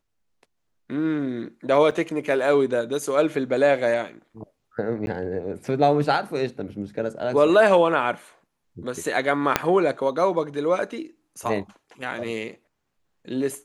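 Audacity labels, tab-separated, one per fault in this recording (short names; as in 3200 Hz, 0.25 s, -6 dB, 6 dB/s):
1.910000	1.910000	gap 4.8 ms
5.060000	5.070000	gap 11 ms
9.560000	9.560000	pop -2 dBFS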